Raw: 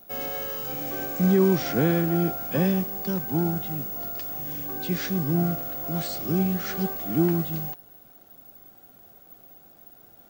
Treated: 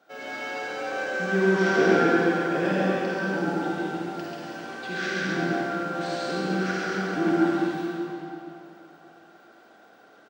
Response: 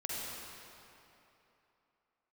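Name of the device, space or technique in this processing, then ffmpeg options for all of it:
station announcement: -filter_complex "[0:a]highpass=320,lowpass=4900,equalizer=frequency=1500:width_type=o:width=0.26:gain=10.5,aecho=1:1:137|239.1:0.708|0.316[link_01];[1:a]atrim=start_sample=2205[link_02];[link_01][link_02]afir=irnorm=-1:irlink=0"

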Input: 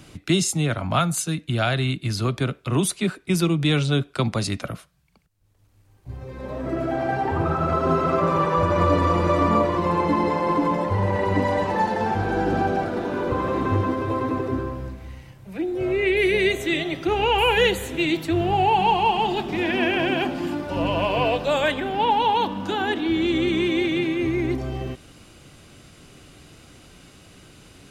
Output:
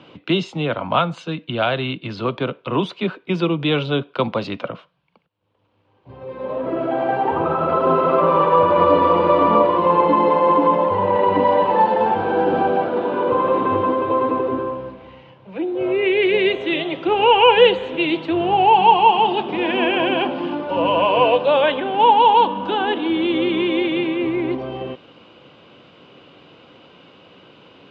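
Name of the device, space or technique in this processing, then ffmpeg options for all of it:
kitchen radio: -af "highpass=190,equalizer=frequency=510:width_type=q:width=4:gain=8,equalizer=frequency=970:width_type=q:width=4:gain=8,equalizer=frequency=1900:width_type=q:width=4:gain=-5,equalizer=frequency=3000:width_type=q:width=4:gain=5,lowpass=frequency=3500:width=0.5412,lowpass=frequency=3500:width=1.3066,volume=2dB"

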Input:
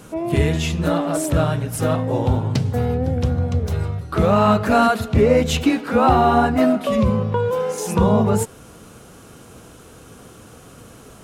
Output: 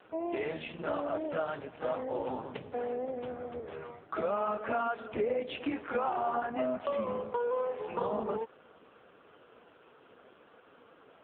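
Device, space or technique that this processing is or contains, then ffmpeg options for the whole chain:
voicemail: -filter_complex "[0:a]asplit=3[link_01][link_02][link_03];[link_01]afade=type=out:start_time=2.55:duration=0.02[link_04];[link_02]asubboost=boost=4.5:cutoff=75,afade=type=in:start_time=2.55:duration=0.02,afade=type=out:start_time=3.71:duration=0.02[link_05];[link_03]afade=type=in:start_time=3.71:duration=0.02[link_06];[link_04][link_05][link_06]amix=inputs=3:normalize=0,highpass=400,lowpass=3200,acompressor=threshold=-20dB:ratio=8,volume=-6.5dB" -ar 8000 -c:a libopencore_amrnb -b:a 5150

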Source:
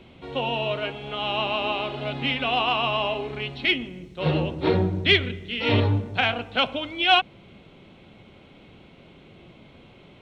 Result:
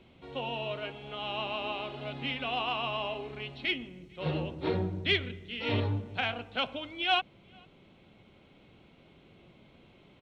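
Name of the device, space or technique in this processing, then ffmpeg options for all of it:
ducked delay: -filter_complex "[0:a]asplit=3[link_01][link_02][link_03];[link_02]adelay=447,volume=-8dB[link_04];[link_03]apad=whole_len=470164[link_05];[link_04][link_05]sidechaincompress=threshold=-43dB:ratio=8:attack=7.9:release=936[link_06];[link_01][link_06]amix=inputs=2:normalize=0,volume=-9dB"

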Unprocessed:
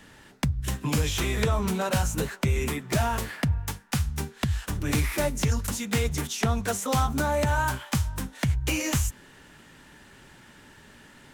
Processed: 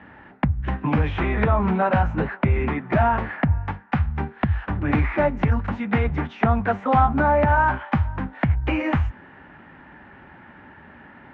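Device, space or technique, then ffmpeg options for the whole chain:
bass cabinet: -af "highpass=60,equalizer=frequency=130:width_type=q:width=4:gain=-6,equalizer=frequency=440:width_type=q:width=4:gain=-5,equalizer=frequency=790:width_type=q:width=4:gain=5,lowpass=frequency=2100:width=0.5412,lowpass=frequency=2100:width=1.3066,volume=7dB"

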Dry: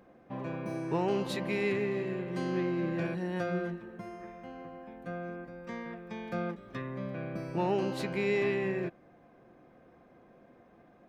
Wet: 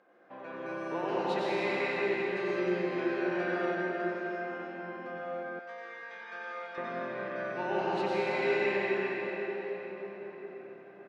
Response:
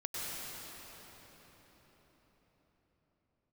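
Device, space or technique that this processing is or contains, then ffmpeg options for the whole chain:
station announcement: -filter_complex "[0:a]highpass=420,lowpass=4600,equalizer=frequency=1500:width_type=o:width=0.29:gain=6.5,aecho=1:1:90.38|163.3:0.355|0.251[link_01];[1:a]atrim=start_sample=2205[link_02];[link_01][link_02]afir=irnorm=-1:irlink=0,asettb=1/sr,asplit=3[link_03][link_04][link_05];[link_03]atrim=end=5.594[link_06];[link_04]atrim=start=5.59:end=6.78,asetpts=PTS-STARTPTS,afade=type=in:duration=0.004:curve=qsin,afade=type=out:start_time=1.186:duration=0.004:curve=qsin,highpass=frequency=1400:poles=1[link_07];[link_05]atrim=start=6.776[link_08];[link_06][link_07]acrossfade=duration=0.004:curve1=hsin:curve2=qsin[link_09];[link_09][link_08]acrossfade=duration=0.004:curve1=qsin:curve2=hsin"

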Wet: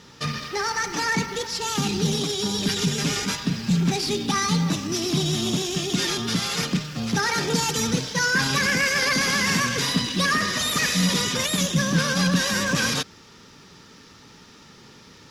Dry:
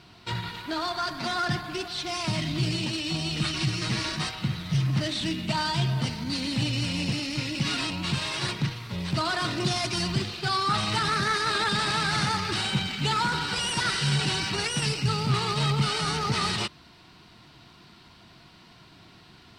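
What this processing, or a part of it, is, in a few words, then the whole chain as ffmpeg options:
nightcore: -af "asetrate=56448,aresample=44100,volume=4dB"

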